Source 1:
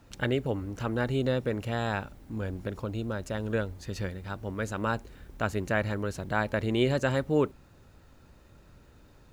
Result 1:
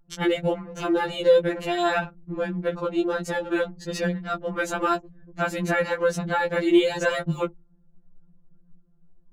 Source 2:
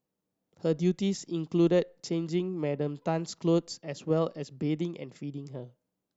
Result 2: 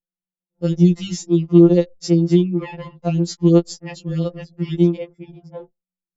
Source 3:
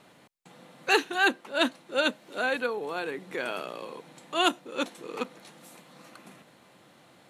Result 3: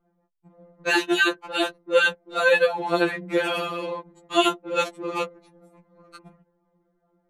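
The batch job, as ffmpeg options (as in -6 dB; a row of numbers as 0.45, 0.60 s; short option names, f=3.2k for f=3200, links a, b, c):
-af "anlmdn=0.1,alimiter=level_in=19dB:limit=-1dB:release=50:level=0:latency=1,afftfilt=real='re*2.83*eq(mod(b,8),0)':imag='im*2.83*eq(mod(b,8),0)':win_size=2048:overlap=0.75,volume=-7dB"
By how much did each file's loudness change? +6.0, +12.5, +5.5 LU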